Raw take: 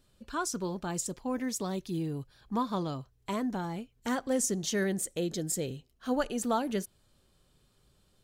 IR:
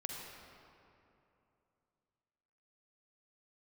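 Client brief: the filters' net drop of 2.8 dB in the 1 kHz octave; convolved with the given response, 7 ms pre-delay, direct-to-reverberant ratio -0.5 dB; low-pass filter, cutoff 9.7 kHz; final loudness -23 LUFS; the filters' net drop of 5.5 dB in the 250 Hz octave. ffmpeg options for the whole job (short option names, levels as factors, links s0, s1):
-filter_complex "[0:a]lowpass=9700,equalizer=f=250:t=o:g=-7,equalizer=f=1000:t=o:g=-3,asplit=2[s0][s1];[1:a]atrim=start_sample=2205,adelay=7[s2];[s1][s2]afir=irnorm=-1:irlink=0,volume=1.06[s3];[s0][s3]amix=inputs=2:normalize=0,volume=3.16"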